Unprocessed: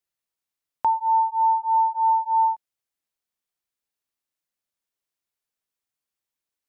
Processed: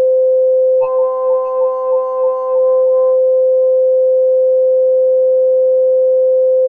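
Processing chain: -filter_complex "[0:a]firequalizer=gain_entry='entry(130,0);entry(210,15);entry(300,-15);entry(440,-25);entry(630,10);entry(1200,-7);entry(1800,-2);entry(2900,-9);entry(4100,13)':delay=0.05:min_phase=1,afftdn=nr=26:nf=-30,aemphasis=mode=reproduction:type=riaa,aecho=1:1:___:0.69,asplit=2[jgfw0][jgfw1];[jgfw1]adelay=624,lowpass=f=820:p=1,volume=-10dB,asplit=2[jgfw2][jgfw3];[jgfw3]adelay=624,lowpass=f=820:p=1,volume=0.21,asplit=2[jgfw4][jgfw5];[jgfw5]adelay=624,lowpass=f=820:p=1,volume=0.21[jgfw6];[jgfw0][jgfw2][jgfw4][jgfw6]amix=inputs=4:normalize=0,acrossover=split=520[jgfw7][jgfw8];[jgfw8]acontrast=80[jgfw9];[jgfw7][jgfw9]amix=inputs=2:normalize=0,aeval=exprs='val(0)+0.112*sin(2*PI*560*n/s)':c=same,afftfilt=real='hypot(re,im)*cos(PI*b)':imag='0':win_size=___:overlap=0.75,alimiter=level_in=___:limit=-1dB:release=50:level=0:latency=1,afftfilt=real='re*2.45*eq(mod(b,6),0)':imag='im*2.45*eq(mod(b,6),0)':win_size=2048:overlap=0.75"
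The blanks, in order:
3.5, 1024, 10.5dB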